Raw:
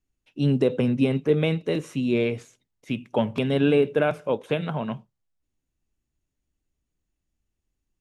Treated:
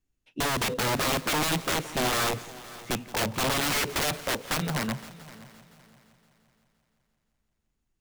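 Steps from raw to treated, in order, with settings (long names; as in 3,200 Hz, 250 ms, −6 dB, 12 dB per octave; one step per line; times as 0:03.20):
wrap-around overflow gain 21.5 dB
echo machine with several playback heads 172 ms, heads first and third, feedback 49%, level −19 dB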